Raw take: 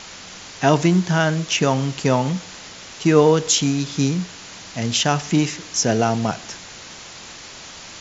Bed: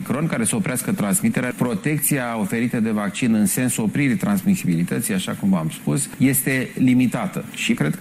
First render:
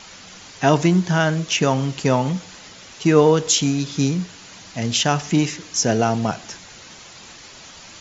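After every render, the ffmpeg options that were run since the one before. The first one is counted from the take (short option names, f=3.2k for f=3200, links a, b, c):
-af "afftdn=nr=6:nf=-39"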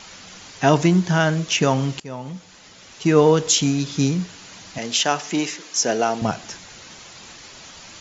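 -filter_complex "[0:a]asettb=1/sr,asplit=3[a][b][c];[a]atrim=end=4.784[d];[b]atrim=start=4.78:end=6.22,asetpts=PTS-STARTPTS,afade=t=in:d=0.004:c=qsin,afade=t=out:st=1.436:d=0.004:c=qsin,highpass=330[e];[c]atrim=start=6.216[f];[d][e]acrossfade=d=0.004:c1=hsin:c2=qsin[g];[g][f]acrossfade=d=0.004:c1=qsin:c2=hsin,asplit=2[h][i];[h]atrim=end=2,asetpts=PTS-STARTPTS,afade=t=out:st=1.996:d=0.004:c=hsin:silence=0.0944061[j];[i]atrim=start=2,asetpts=PTS-STARTPTS,afade=t=in:d=1.32:silence=0.0944061[k];[j][k]concat=n=2:v=0:a=1"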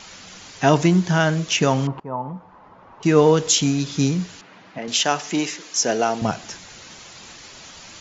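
-filter_complex "[0:a]asettb=1/sr,asplit=3[a][b][c];[a]atrim=end=1.874[d];[b]atrim=start=1.87:end=3.03,asetpts=PTS-STARTPTS,afade=t=in:d=0.004:c=qsin,afade=t=out:st=1.156:d=0.004:c=qsin,lowpass=f=990:t=q:w=3.5[e];[c]atrim=start=3.026[f];[d][e]acrossfade=d=0.004:c1=hsin:c2=qsin[g];[g][f]acrossfade=d=0.004:c1=qsin:c2=hsin,asettb=1/sr,asplit=3[h][i][j];[h]atrim=end=4.414[k];[i]atrim=start=4.41:end=4.88,asetpts=PTS-STARTPTS,afade=t=in:d=0.004:c=qsin,afade=t=out:st=0.466:d=0.004:c=qsin,highpass=180,lowpass=2k[l];[j]atrim=start=4.876[m];[k][l]acrossfade=d=0.004:c1=hsin:c2=qsin[n];[n][m]acrossfade=d=0.004:c1=qsin:c2=hsin"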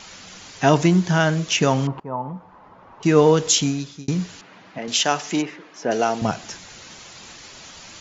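-filter_complex "[0:a]asplit=3[a][b][c];[a]afade=t=out:st=5.41:d=0.02[d];[b]lowpass=1.8k,afade=t=in:st=5.41:d=0.02,afade=t=out:st=5.9:d=0.02[e];[c]afade=t=in:st=5.9:d=0.02[f];[d][e][f]amix=inputs=3:normalize=0,asplit=2[g][h];[g]atrim=end=4.08,asetpts=PTS-STARTPTS,afade=t=out:st=3.57:d=0.51[i];[h]atrim=start=4.08,asetpts=PTS-STARTPTS,afade=t=in:d=0.004:c=hsin[j];[i][j]concat=n=2:v=0:a=1"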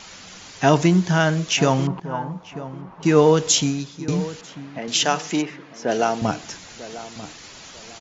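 -filter_complex "[0:a]asplit=2[a][b];[b]adelay=943,lowpass=f=1.4k:p=1,volume=-14.5dB,asplit=2[c][d];[d]adelay=943,lowpass=f=1.4k:p=1,volume=0.31,asplit=2[e][f];[f]adelay=943,lowpass=f=1.4k:p=1,volume=0.31[g];[a][c][e][g]amix=inputs=4:normalize=0"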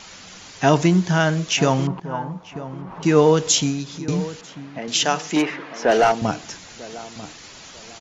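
-filter_complex "[0:a]asettb=1/sr,asplit=3[a][b][c];[a]atrim=end=2.564[d];[b]atrim=start=2.56:end=4.19,asetpts=PTS-STARTPTS,afade=t=in:d=0.004:c=qsin,afade=t=out:st=1.626:d=0.004:c=qsin,acompressor=mode=upward:threshold=-26dB:ratio=2.5:attack=3.2:release=140:knee=2.83:detection=peak[e];[c]atrim=start=4.186[f];[d][e]acrossfade=d=0.004:c1=hsin:c2=qsin[g];[g][f]acrossfade=d=0.004:c1=qsin:c2=hsin,asettb=1/sr,asplit=3[h][i][j];[h]atrim=end=5.364[k];[i]atrim=start=5.36:end=6.12,asetpts=PTS-STARTPTS,afade=t=in:d=0.004:c=qsin,afade=t=out:st=0.756:d=0.004:c=qsin,asplit=2[l][m];[m]highpass=f=720:p=1,volume=18dB,asoftclip=type=tanh:threshold=-5.5dB[n];[l][n]amix=inputs=2:normalize=0,lowpass=f=2.1k:p=1,volume=-6dB[o];[j]atrim=start=6.116[p];[k][o]acrossfade=d=0.004:c1=hsin:c2=qsin[q];[q][p]acrossfade=d=0.004:c1=qsin:c2=hsin"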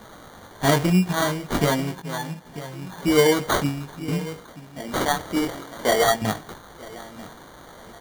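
-af "flanger=delay=18.5:depth=3.6:speed=0.47,acrusher=samples=17:mix=1:aa=0.000001"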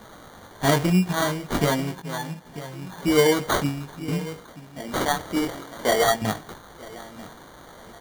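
-af "volume=-1dB"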